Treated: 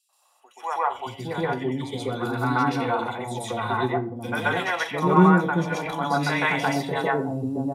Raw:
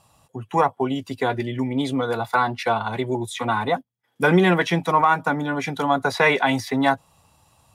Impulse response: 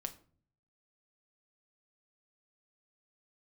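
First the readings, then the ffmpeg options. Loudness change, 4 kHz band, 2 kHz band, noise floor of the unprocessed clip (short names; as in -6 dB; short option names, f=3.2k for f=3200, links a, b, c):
-2.5 dB, -3.5 dB, -3.0 dB, -69 dBFS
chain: -filter_complex "[0:a]acrossover=split=580|2800[a][b][c];[b]adelay=90[d];[a]adelay=710[e];[e][d][c]amix=inputs=3:normalize=0,asplit=2[f][g];[1:a]atrim=start_sample=2205,adelay=128[h];[g][h]afir=irnorm=-1:irlink=0,volume=7.5dB[i];[f][i]amix=inputs=2:normalize=0,volume=-8dB"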